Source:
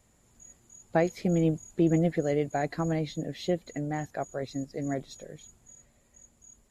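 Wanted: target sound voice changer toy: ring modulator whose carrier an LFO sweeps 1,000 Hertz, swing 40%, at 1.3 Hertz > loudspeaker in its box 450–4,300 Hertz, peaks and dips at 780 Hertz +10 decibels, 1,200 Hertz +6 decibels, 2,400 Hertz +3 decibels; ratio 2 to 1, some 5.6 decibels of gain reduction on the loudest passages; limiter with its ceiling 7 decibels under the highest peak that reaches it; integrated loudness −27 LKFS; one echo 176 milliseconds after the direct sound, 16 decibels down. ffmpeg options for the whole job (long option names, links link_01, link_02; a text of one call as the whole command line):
ffmpeg -i in.wav -af "acompressor=threshold=-30dB:ratio=2,alimiter=level_in=1dB:limit=-24dB:level=0:latency=1,volume=-1dB,aecho=1:1:176:0.158,aeval=exprs='val(0)*sin(2*PI*1000*n/s+1000*0.4/1.3*sin(2*PI*1.3*n/s))':channel_layout=same,highpass=450,equalizer=frequency=780:width_type=q:width=4:gain=10,equalizer=frequency=1200:width_type=q:width=4:gain=6,equalizer=frequency=2400:width_type=q:width=4:gain=3,lowpass=frequency=4300:width=0.5412,lowpass=frequency=4300:width=1.3066,volume=7dB" out.wav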